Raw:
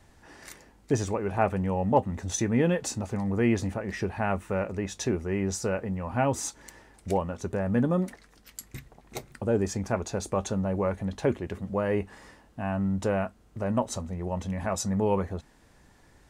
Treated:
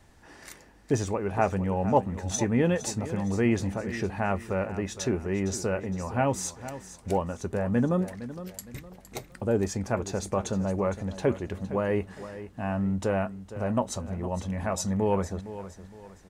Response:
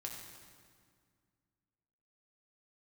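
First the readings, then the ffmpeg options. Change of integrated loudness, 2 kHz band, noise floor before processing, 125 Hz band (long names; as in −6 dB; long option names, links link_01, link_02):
0.0 dB, 0.0 dB, −59 dBFS, 0.0 dB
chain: -af "aecho=1:1:462|924|1386:0.211|0.0761|0.0274"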